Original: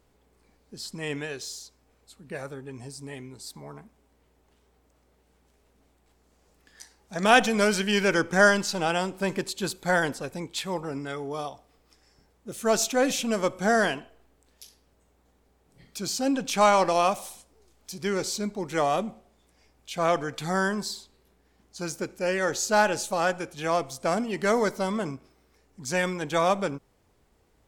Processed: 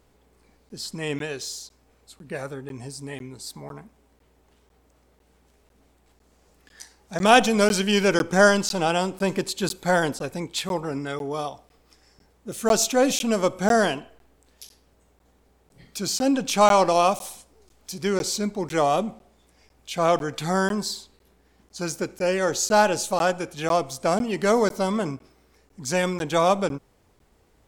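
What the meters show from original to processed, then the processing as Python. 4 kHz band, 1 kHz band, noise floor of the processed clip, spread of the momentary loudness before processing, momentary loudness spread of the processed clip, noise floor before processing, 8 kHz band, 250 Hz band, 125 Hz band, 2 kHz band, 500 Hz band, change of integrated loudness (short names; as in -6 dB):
+3.5 dB, +3.0 dB, -62 dBFS, 19 LU, 18 LU, -66 dBFS, +4.0 dB, +4.0 dB, +4.0 dB, 0.0 dB, +3.5 dB, +3.0 dB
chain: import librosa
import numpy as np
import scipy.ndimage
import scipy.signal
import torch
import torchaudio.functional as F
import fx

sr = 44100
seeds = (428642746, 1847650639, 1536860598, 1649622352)

y = fx.dynamic_eq(x, sr, hz=1800.0, q=2.0, threshold_db=-40.0, ratio=4.0, max_db=-6)
y = fx.buffer_crackle(y, sr, first_s=0.69, period_s=0.5, block=512, kind='zero')
y = F.gain(torch.from_numpy(y), 4.0).numpy()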